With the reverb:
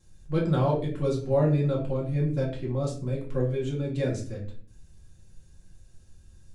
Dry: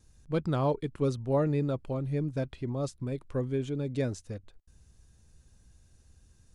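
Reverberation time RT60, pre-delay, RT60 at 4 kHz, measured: 0.45 s, 4 ms, 0.35 s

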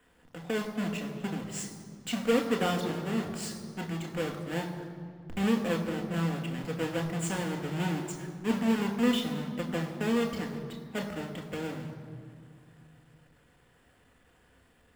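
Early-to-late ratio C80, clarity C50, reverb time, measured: 8.5 dB, 8.0 dB, 2.3 s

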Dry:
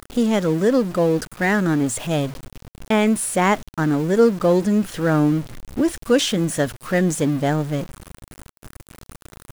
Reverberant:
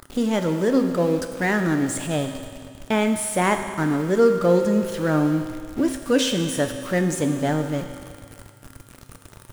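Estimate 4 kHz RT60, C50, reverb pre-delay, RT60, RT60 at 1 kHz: 2.0 s, 7.5 dB, 3 ms, 2.1 s, 2.1 s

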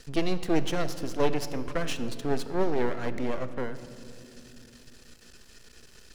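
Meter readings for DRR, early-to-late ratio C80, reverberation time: 11.5 dB, 13.0 dB, 2.9 s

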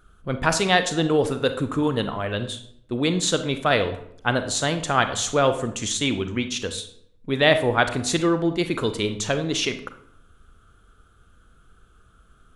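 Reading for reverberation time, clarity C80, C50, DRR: 0.70 s, 14.5 dB, 11.0 dB, 8.5 dB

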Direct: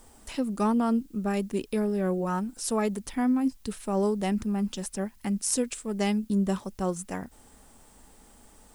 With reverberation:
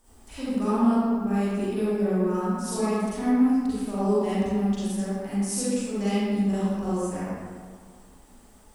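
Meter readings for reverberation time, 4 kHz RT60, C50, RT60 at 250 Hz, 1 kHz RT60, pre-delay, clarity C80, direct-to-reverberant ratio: 1.8 s, 1.1 s, -7.0 dB, 1.8 s, 1.8 s, 36 ms, -3.0 dB, -12.0 dB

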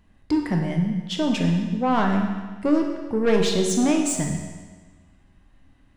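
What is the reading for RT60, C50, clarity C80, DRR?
1.4 s, 4.0 dB, 5.5 dB, 1.5 dB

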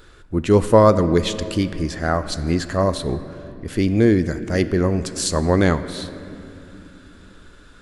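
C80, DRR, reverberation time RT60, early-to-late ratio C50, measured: 13.0 dB, 11.5 dB, 2.9 s, 12.5 dB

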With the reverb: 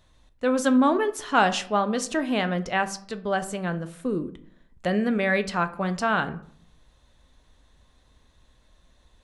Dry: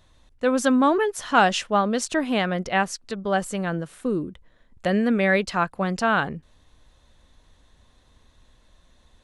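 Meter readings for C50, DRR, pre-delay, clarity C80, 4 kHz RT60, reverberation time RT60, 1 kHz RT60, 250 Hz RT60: 16.0 dB, 10.0 dB, 7 ms, 19.5 dB, 0.30 s, 0.60 s, 0.55 s, 0.70 s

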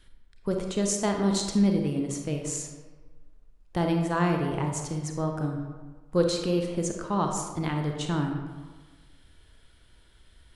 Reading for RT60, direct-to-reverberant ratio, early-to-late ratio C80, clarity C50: 1.4 s, 2.5 dB, 6.0 dB, 4.0 dB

